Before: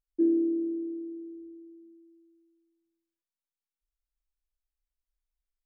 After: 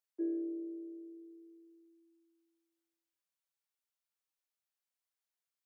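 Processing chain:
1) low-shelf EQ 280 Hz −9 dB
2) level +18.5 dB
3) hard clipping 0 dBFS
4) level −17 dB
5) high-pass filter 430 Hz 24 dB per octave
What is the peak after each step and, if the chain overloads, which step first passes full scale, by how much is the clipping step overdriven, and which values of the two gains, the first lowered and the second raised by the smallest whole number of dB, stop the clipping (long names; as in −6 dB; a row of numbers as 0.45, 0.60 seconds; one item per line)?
−20.5, −2.0, −2.0, −19.0, −28.5 dBFS
no step passes full scale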